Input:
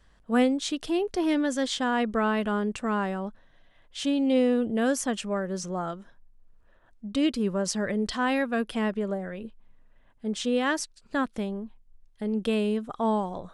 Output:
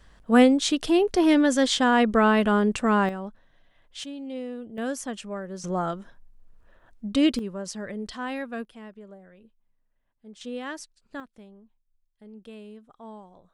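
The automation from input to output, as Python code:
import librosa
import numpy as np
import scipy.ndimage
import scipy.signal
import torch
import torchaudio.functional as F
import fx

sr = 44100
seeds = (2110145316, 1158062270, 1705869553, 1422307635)

y = fx.gain(x, sr, db=fx.steps((0.0, 6.0), (3.09, -2.0), (4.04, -12.0), (4.78, -5.0), (5.64, 4.0), (7.39, -6.5), (8.65, -16.0), (10.41, -9.0), (11.2, -17.5)))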